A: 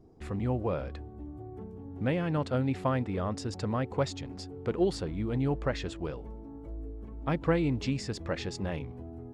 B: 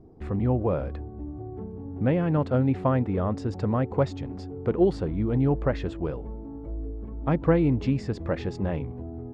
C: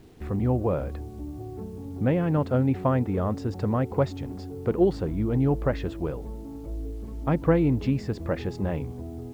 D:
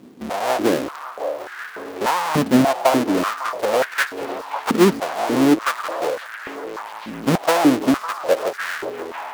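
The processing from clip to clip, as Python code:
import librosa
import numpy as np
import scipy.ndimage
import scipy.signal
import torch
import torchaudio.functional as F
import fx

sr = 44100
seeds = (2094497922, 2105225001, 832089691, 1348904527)

y1 = fx.lowpass(x, sr, hz=1000.0, slope=6)
y1 = F.gain(torch.from_numpy(y1), 6.5).numpy()
y2 = fx.quant_dither(y1, sr, seeds[0], bits=10, dither='none')
y3 = fx.halfwave_hold(y2, sr)
y3 = fx.echo_stepped(y3, sr, ms=552, hz=790.0, octaves=0.7, feedback_pct=70, wet_db=-6)
y3 = fx.filter_held_highpass(y3, sr, hz=3.4, low_hz=230.0, high_hz=1600.0)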